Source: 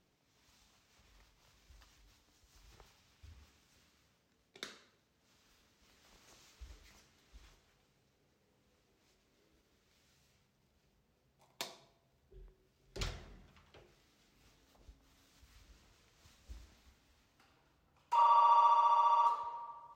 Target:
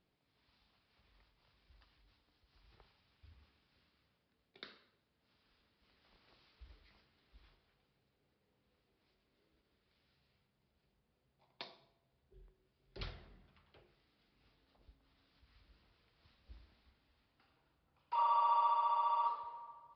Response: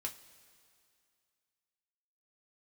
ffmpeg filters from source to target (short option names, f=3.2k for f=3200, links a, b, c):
-af "aresample=11025,aresample=44100,volume=-5dB"